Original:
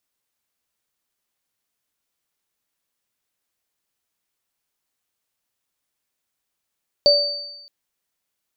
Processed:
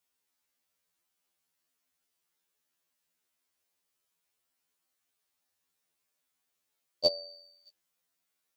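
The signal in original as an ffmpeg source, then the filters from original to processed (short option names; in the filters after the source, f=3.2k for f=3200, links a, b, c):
-f lavfi -i "aevalsrc='0.266*pow(10,-3*t/0.7)*sin(2*PI*579*t)+0.266*pow(10,-3*t/1.14)*sin(2*PI*4590*t)':d=0.62:s=44100"
-af "lowshelf=f=91:g=-8.5,afftfilt=real='re*2*eq(mod(b,4),0)':imag='im*2*eq(mod(b,4),0)':win_size=2048:overlap=0.75"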